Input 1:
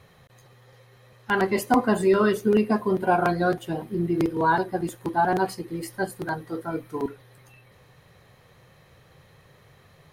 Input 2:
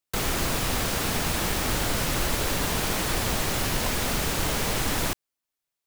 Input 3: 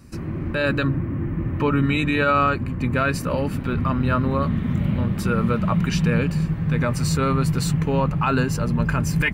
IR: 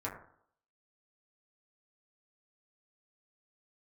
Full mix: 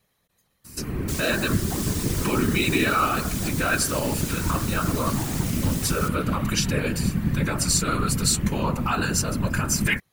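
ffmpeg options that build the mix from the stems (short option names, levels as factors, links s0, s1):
-filter_complex "[0:a]volume=0.224[s0];[1:a]adelay=950,volume=0.266,asplit=2[s1][s2];[s2]volume=0.251[s3];[2:a]adelay=650,volume=1.41,asplit=2[s4][s5];[s5]volume=0.316[s6];[s1][s4]amix=inputs=2:normalize=0,highshelf=f=4400:g=9,alimiter=limit=0.224:level=0:latency=1:release=272,volume=1[s7];[3:a]atrim=start_sample=2205[s8];[s3][s6]amix=inputs=2:normalize=0[s9];[s9][s8]afir=irnorm=-1:irlink=0[s10];[s0][s7][s10]amix=inputs=3:normalize=0,acrossover=split=9500[s11][s12];[s12]acompressor=threshold=0.00447:ratio=4:attack=1:release=60[s13];[s11][s13]amix=inputs=2:normalize=0,afftfilt=real='hypot(re,im)*cos(2*PI*random(0))':imag='hypot(re,im)*sin(2*PI*random(1))':win_size=512:overlap=0.75,crystalizer=i=3.5:c=0"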